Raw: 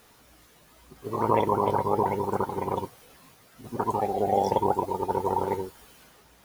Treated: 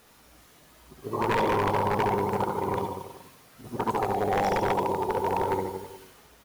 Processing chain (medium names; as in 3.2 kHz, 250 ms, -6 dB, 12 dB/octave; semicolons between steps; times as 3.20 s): reverse bouncing-ball echo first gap 70 ms, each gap 1.1×, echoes 5; wavefolder -17 dBFS; trim -1 dB